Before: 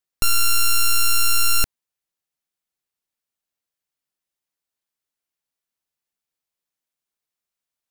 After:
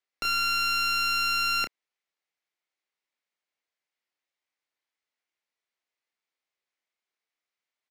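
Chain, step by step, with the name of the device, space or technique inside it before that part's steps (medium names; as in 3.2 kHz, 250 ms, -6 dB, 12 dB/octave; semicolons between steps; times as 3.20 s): intercom (band-pass 320–4900 Hz; peaking EQ 2.1 kHz +6.5 dB 0.35 oct; saturation -22 dBFS, distortion -9 dB; doubling 29 ms -7 dB)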